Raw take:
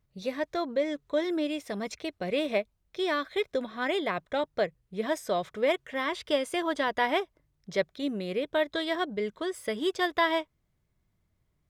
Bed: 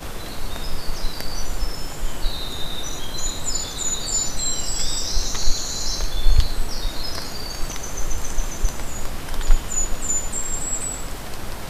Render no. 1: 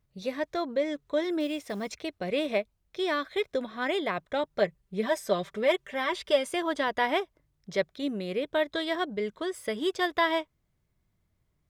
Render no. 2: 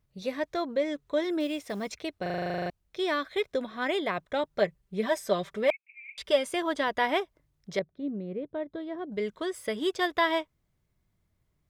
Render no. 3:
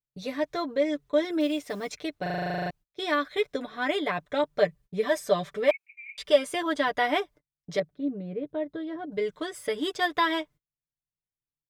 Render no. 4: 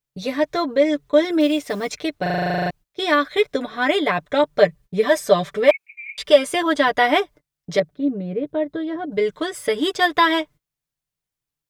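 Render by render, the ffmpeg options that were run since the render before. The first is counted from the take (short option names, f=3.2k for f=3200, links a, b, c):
-filter_complex "[0:a]asettb=1/sr,asplit=3[a][b][c];[a]atrim=end=1.404[d];[b]atrim=start=1.4:end=2.03,asetpts=PTS-STARTPTS,afade=t=in:d=0.004:c=qsin,afade=t=out:st=0.626:d=0.004:c=qsin,acrusher=bits=7:mode=log:mix=0:aa=0.000001[e];[c]atrim=start=2.026[f];[d][e]acrossfade=d=0.004:c1=hsin:c2=qsin[g];[g][f]acrossfade=d=0.004:c1=qsin:c2=hsin,asettb=1/sr,asplit=3[h][i][j];[h]atrim=end=4.504[k];[i]atrim=start=4.5:end=6.51,asetpts=PTS-STARTPTS,afade=t=in:d=0.004:c=qsin,afade=t=out:st=2.006:d=0.004:c=qsin,aecho=1:1:5.1:0.65,atrim=end_sample=88641[l];[j]atrim=start=6.506[m];[k][l]acrossfade=d=0.004:c1=hsin:c2=qsin[n];[n][m]acrossfade=d=0.004:c1=qsin:c2=hsin"
-filter_complex "[0:a]asettb=1/sr,asplit=3[a][b][c];[a]atrim=end=5.704[d];[b]atrim=start=5.7:end=6.18,asetpts=PTS-STARTPTS,afade=t=in:d=0.004:c=qsin,afade=t=out:st=0.476:d=0.004:c=qsin,asuperpass=centerf=2400:order=8:qfactor=6.1[e];[c]atrim=start=6.176[f];[d][e]acrossfade=d=0.004:c1=hsin:c2=qsin[g];[g][f]acrossfade=d=0.004:c1=qsin:c2=hsin,asettb=1/sr,asplit=3[h][i][j];[h]atrim=end=7.794[k];[i]atrim=start=7.79:end=9.12,asetpts=PTS-STARTPTS,afade=t=in:d=0.004:c=qsin,afade=t=out:st=1.326:d=0.004:c=qsin,bandpass=f=160:t=q:w=0.59[l];[j]atrim=start=9.116[m];[k][l]acrossfade=d=0.004:c1=hsin:c2=qsin[n];[n][m]acrossfade=d=0.004:c1=qsin:c2=hsin,asplit=13[o][p][q][r][s][t][u][v][w][x][y][z][aa];[o]atrim=end=2.262[ab];[p]atrim=start=2.218:end=2.262[ac];[q]atrim=start=2.218:end=2.262[ad];[r]atrim=start=2.218:end=2.262[ae];[s]atrim=start=2.218:end=2.262[af];[t]atrim=start=2.218:end=2.262[ag];[u]atrim=start=2.218:end=2.262[ah];[v]atrim=start=2.218:end=2.262[ai];[w]atrim=start=2.218:end=2.262[aj];[x]atrim=start=2.218:end=2.262[ak];[y]atrim=start=2.218:end=2.262[al];[z]atrim=start=2.218:end=2.262[am];[aa]atrim=start=2.698[an];[ab][ac]acrossfade=d=0.004:c1=hsin:c2=hsin[ao];[ao][ad]acrossfade=d=0.004:c1=hsin:c2=hsin[ap];[ap][ae]acrossfade=d=0.004:c1=hsin:c2=hsin[aq];[aq][af]acrossfade=d=0.004:c1=hsin:c2=hsin[ar];[ar][ag]acrossfade=d=0.004:c1=hsin:c2=hsin[as];[as][ah]acrossfade=d=0.004:c1=hsin:c2=hsin[at];[at][ai]acrossfade=d=0.004:c1=hsin:c2=hsin[au];[au][aj]acrossfade=d=0.004:c1=hsin:c2=hsin[av];[av][ak]acrossfade=d=0.004:c1=hsin:c2=hsin[aw];[aw][al]acrossfade=d=0.004:c1=hsin:c2=hsin[ax];[ax][am]acrossfade=d=0.004:c1=hsin:c2=hsin[ay];[ay][an]acrossfade=d=0.004:c1=hsin:c2=hsin"
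-af "agate=range=-29dB:threshold=-49dB:ratio=16:detection=peak,aecho=1:1:6.8:0.69"
-af "volume=8.5dB,alimiter=limit=-1dB:level=0:latency=1"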